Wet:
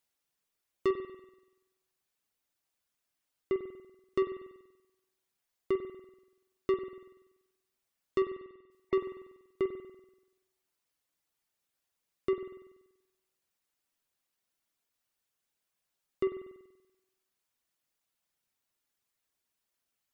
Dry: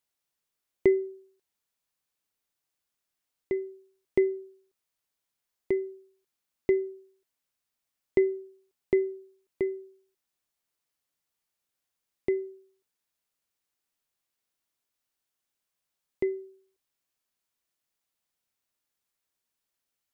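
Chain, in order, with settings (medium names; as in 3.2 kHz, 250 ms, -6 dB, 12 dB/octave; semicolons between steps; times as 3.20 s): 8.28–8.95 s: spectral gate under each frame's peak -30 dB strong; reverb removal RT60 0.67 s; saturation -25 dBFS, distortion -9 dB; spring tank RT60 1 s, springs 48 ms, chirp 65 ms, DRR 6.5 dB; trim +1.5 dB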